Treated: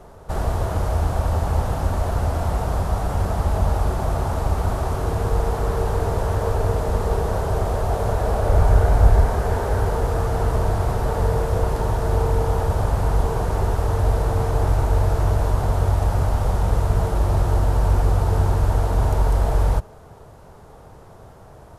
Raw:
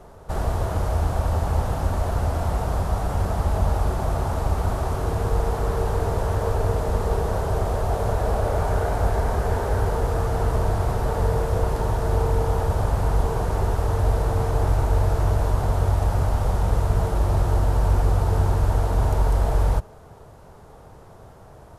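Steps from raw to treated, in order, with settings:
0:08.47–0:09.25: low-shelf EQ 110 Hz +10 dB
level +1.5 dB

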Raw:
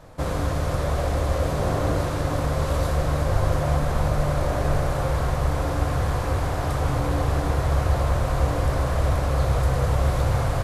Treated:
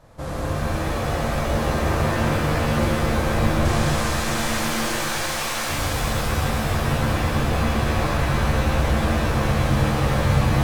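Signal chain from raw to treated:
0:03.65–0:05.69: meter weighting curve ITU-R 468
reverb with rising layers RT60 3.6 s, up +7 semitones, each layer −2 dB, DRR −4.5 dB
level −5.5 dB

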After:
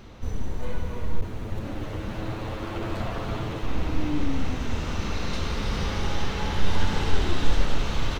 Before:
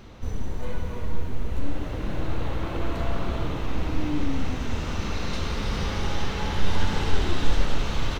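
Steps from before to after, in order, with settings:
0:01.21–0:03.63: lower of the sound and its delayed copy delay 9.3 ms

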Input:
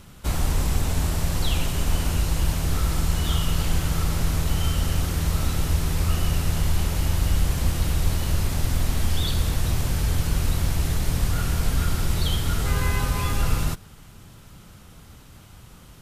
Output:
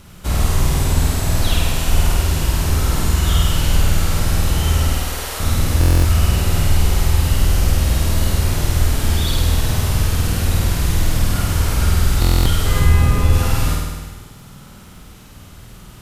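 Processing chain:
0:04.93–0:05.40: high-pass filter 420 Hz 24 dB per octave
0:12.79–0:13.33: tilt shelving filter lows +5.5 dB, about 690 Hz
surface crackle 26 per second −43 dBFS
flutter between parallel walls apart 8.7 metres, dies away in 1.4 s
buffer that repeats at 0:05.79/0:12.20, samples 1,024, times 10
level +3 dB

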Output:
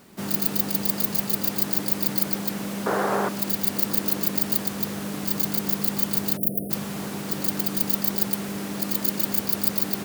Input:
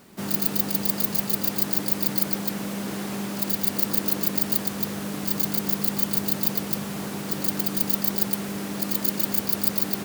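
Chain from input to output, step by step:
0:02.86–0:03.29: flat-topped bell 820 Hz +14.5 dB 2.4 octaves
0:06.37–0:06.71: time-frequency box erased 740–9,100 Hz

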